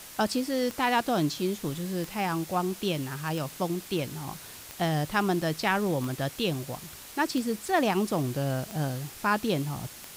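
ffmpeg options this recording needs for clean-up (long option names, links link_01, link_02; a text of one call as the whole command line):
ffmpeg -i in.wav -af "adeclick=threshold=4,afwtdn=0.0063" out.wav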